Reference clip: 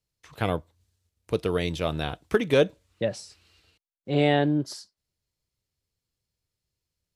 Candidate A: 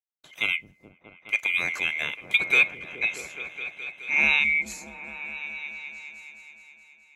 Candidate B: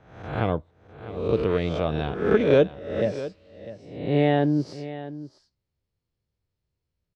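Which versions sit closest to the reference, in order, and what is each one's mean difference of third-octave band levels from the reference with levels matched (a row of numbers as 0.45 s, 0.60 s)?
B, A; 7.0 dB, 12.0 dB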